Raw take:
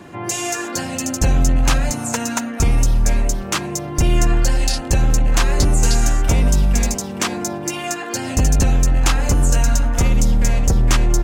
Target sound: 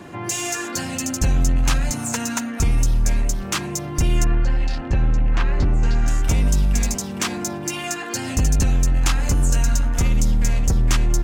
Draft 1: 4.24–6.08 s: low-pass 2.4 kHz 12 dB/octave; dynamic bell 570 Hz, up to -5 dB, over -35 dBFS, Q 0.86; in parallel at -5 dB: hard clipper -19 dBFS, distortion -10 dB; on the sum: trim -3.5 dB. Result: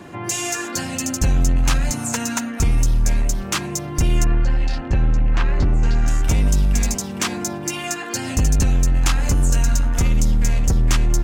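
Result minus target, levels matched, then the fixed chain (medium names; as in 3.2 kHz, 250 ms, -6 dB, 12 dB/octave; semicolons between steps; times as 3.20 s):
hard clipper: distortion -4 dB
4.24–6.08 s: low-pass 2.4 kHz 12 dB/octave; dynamic bell 570 Hz, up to -5 dB, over -35 dBFS, Q 0.86; in parallel at -5 dB: hard clipper -26 dBFS, distortion -6 dB; on the sum: trim -3.5 dB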